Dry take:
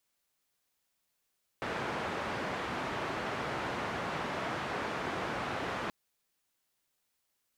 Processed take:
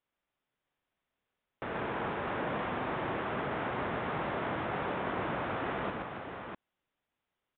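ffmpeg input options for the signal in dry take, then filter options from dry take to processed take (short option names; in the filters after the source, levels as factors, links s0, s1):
-f lavfi -i "anoisesrc=c=white:d=4.28:r=44100:seed=1,highpass=f=87,lowpass=f=1400,volume=-19.4dB"
-filter_complex "[0:a]highshelf=f=2500:g=-9.5,asplit=2[s0][s1];[s1]aecho=0:1:123|280|648:0.668|0.335|0.562[s2];[s0][s2]amix=inputs=2:normalize=0,aresample=8000,aresample=44100"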